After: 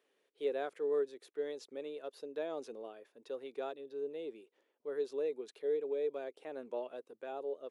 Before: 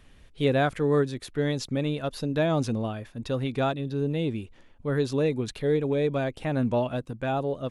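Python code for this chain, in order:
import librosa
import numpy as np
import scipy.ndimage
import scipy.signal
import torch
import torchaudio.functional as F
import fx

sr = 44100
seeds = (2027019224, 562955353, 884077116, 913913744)

y = fx.ladder_highpass(x, sr, hz=370.0, resonance_pct=60)
y = F.gain(torch.from_numpy(y), -7.5).numpy()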